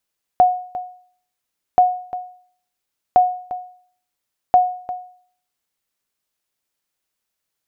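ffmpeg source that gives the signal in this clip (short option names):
-f lavfi -i "aevalsrc='0.562*(sin(2*PI*728*mod(t,1.38))*exp(-6.91*mod(t,1.38)/0.53)+0.178*sin(2*PI*728*max(mod(t,1.38)-0.35,0))*exp(-6.91*max(mod(t,1.38)-0.35,0)/0.53))':d=5.52:s=44100"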